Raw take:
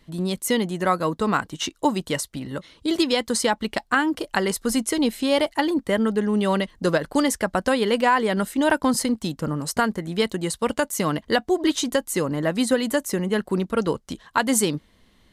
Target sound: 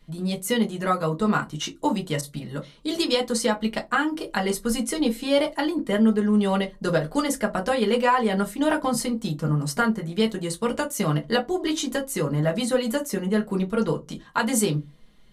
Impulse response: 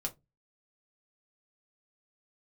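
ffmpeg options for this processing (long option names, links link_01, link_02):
-filter_complex "[1:a]atrim=start_sample=2205[link_01];[0:a][link_01]afir=irnorm=-1:irlink=0,asettb=1/sr,asplit=3[link_02][link_03][link_04];[link_02]atrim=end=2.214[link_05];[link_03]atrim=start=2.21:end=3.18,asetpts=PTS-STARTPTS,afade=type=in:duration=0.004:curve=qsin,afade=type=out:start_time=0.966:duration=0.004:curve=qsin,adynamicequalizer=threshold=0.0126:dfrequency=3100:dqfactor=0.7:tfrequency=3100:tqfactor=0.7:attack=5:release=100:ratio=0.375:range=2:mode=boostabove:tftype=highshelf[link_06];[link_04]atrim=start=3.176[link_07];[link_05][link_06]acrossfade=duration=0.004:curve1=hsin:curve2=qsin[link_08];[link_08][link_07]acrossfade=duration=0.004:curve1=qsin:curve2=hsin,volume=-3dB"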